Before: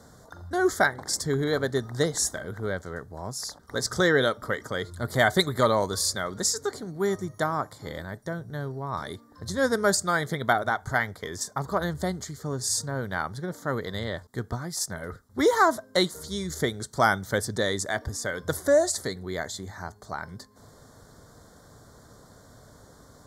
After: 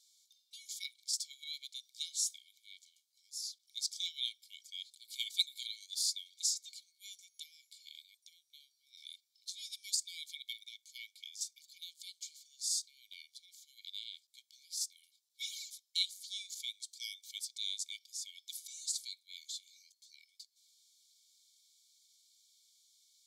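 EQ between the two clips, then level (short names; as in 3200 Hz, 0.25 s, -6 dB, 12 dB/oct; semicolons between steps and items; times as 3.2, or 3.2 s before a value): brick-wall FIR high-pass 2200 Hz; high shelf 5000 Hz -11.5 dB; 0.0 dB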